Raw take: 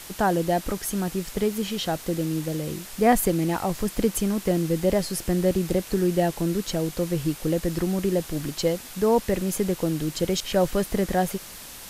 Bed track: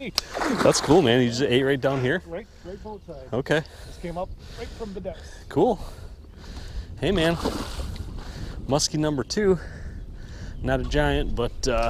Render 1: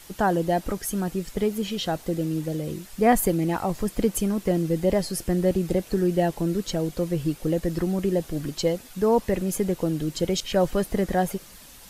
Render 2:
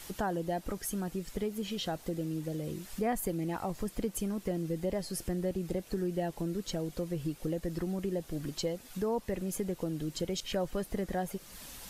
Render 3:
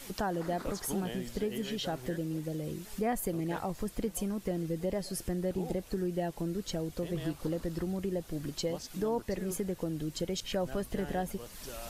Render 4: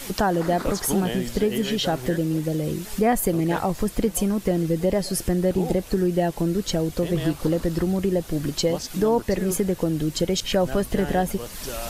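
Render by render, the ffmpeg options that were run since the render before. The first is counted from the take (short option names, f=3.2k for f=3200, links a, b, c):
-af "afftdn=nr=8:nf=-41"
-af "acompressor=threshold=-39dB:ratio=2"
-filter_complex "[1:a]volume=-22dB[a];[0:a][a]amix=inputs=2:normalize=0"
-af "volume=11.5dB"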